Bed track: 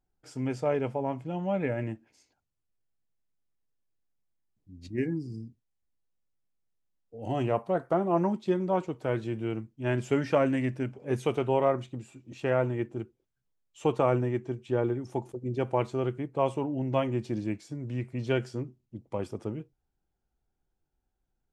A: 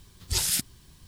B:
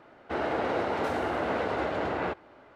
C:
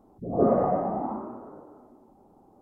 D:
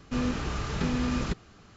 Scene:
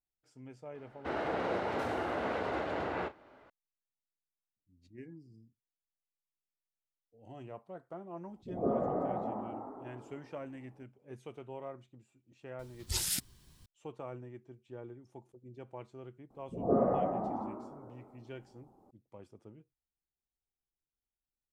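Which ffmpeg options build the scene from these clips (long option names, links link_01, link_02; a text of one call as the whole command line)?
ffmpeg -i bed.wav -i cue0.wav -i cue1.wav -i cue2.wav -filter_complex "[3:a]asplit=2[link_01][link_02];[0:a]volume=-19dB[link_03];[2:a]asplit=2[link_04][link_05];[link_05]adelay=35,volume=-12.5dB[link_06];[link_04][link_06]amix=inputs=2:normalize=0[link_07];[link_01]asplit=5[link_08][link_09][link_10][link_11][link_12];[link_09]adelay=288,afreqshift=31,volume=-5dB[link_13];[link_10]adelay=576,afreqshift=62,volume=-13.9dB[link_14];[link_11]adelay=864,afreqshift=93,volume=-22.7dB[link_15];[link_12]adelay=1152,afreqshift=124,volume=-31.6dB[link_16];[link_08][link_13][link_14][link_15][link_16]amix=inputs=5:normalize=0[link_17];[link_07]atrim=end=2.75,asetpts=PTS-STARTPTS,volume=-5.5dB,afade=type=in:duration=0.004:curve=hsin,afade=type=out:start_time=2.746:duration=0.004:curve=hsin,adelay=750[link_18];[link_17]atrim=end=2.61,asetpts=PTS-STARTPTS,volume=-10dB,afade=type=in:duration=0.004:curve=hsin,afade=type=out:start_time=2.606:duration=0.004:curve=hsin,adelay=8240[link_19];[1:a]atrim=end=1.07,asetpts=PTS-STARTPTS,volume=-7.5dB,afade=type=in:duration=0.004:curve=hsin,afade=type=out:start_time=1.066:duration=0.004:curve=hsin,adelay=12590[link_20];[link_02]atrim=end=2.61,asetpts=PTS-STARTPTS,volume=-6.5dB,afade=type=in:duration=0.004:curve=hsin,afade=type=out:start_time=2.606:duration=0.004:curve=hsin,adelay=16300[link_21];[link_03][link_18][link_19][link_20][link_21]amix=inputs=5:normalize=0" out.wav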